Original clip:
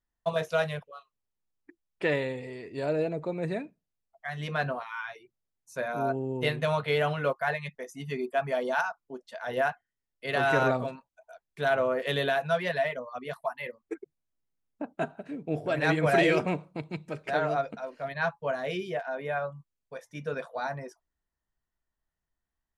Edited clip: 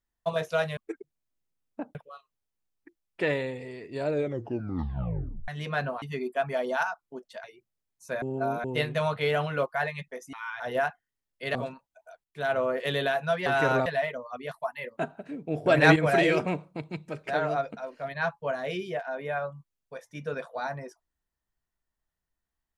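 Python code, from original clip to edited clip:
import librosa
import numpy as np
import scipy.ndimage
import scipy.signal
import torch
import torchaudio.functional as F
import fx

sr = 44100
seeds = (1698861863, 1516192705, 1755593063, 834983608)

y = fx.edit(x, sr, fx.tape_stop(start_s=2.91, length_s=1.39),
    fx.swap(start_s=4.84, length_s=0.27, other_s=8.0, other_length_s=1.42),
    fx.reverse_span(start_s=5.89, length_s=0.42),
    fx.move(start_s=10.37, length_s=0.4, to_s=12.68),
    fx.fade_in_from(start_s=11.46, length_s=0.48, curve='qsin', floor_db=-14.0),
    fx.move(start_s=13.79, length_s=1.18, to_s=0.77),
    fx.clip_gain(start_s=15.66, length_s=0.3, db=7.5), tone=tone)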